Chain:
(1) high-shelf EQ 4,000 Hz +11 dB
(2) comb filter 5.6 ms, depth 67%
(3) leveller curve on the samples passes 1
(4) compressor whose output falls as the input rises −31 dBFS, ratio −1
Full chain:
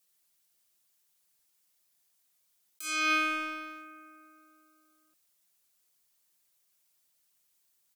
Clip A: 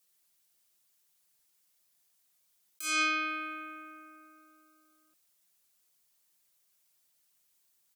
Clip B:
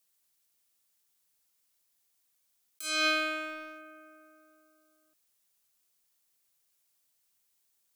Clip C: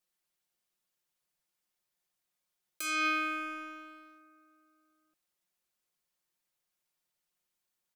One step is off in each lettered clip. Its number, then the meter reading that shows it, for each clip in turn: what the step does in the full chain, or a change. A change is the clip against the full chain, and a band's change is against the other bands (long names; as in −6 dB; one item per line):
3, 8 kHz band +3.5 dB
2, 500 Hz band +8.0 dB
1, 250 Hz band +1.5 dB